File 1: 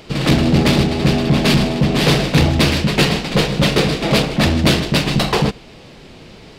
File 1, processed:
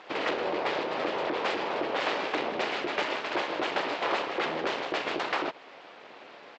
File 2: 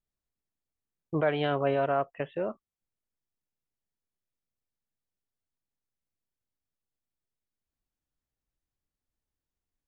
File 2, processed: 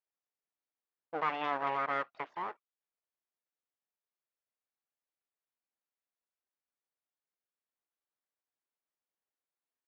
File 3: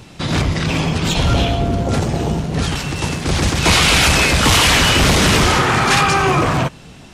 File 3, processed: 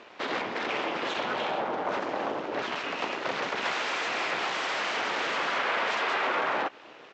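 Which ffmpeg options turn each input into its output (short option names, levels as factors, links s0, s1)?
-af "acompressor=threshold=0.141:ratio=6,aresample=16000,aeval=exprs='abs(val(0))':c=same,aresample=44100,highpass=480,lowpass=2300"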